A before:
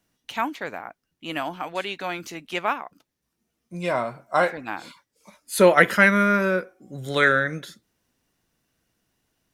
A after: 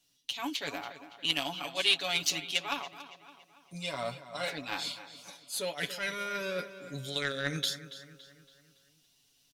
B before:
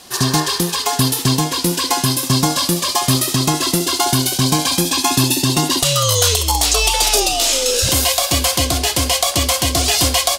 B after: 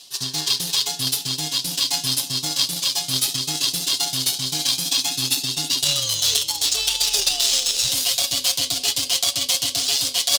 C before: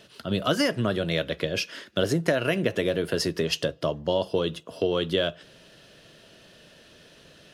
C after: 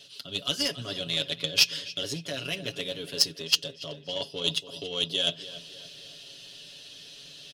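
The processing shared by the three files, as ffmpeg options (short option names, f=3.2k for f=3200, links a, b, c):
-filter_complex "[0:a]areverse,acompressor=threshold=-29dB:ratio=10,areverse,highshelf=f=2.4k:t=q:w=1.5:g=9,aecho=1:1:7.1:0.89,asplit=2[a][b];[b]adelay=282,lowpass=f=4.9k:p=1,volume=-12dB,asplit=2[c][d];[d]adelay=282,lowpass=f=4.9k:p=1,volume=0.5,asplit=2[e][f];[f]adelay=282,lowpass=f=4.9k:p=1,volume=0.5,asplit=2[g][h];[h]adelay=282,lowpass=f=4.9k:p=1,volume=0.5,asplit=2[i][j];[j]adelay=282,lowpass=f=4.9k:p=1,volume=0.5[k];[c][e][g][i][k]amix=inputs=5:normalize=0[l];[a][l]amix=inputs=2:normalize=0,aeval=exprs='0.631*(cos(1*acos(clip(val(0)/0.631,-1,1)))-cos(1*PI/2))+0.0562*(cos(3*acos(clip(val(0)/0.631,-1,1)))-cos(3*PI/2))+0.0398*(cos(7*acos(clip(val(0)/0.631,-1,1)))-cos(7*PI/2))':c=same,equalizer=f=4.3k:w=0.7:g=5,dynaudnorm=f=140:g=5:m=3.5dB"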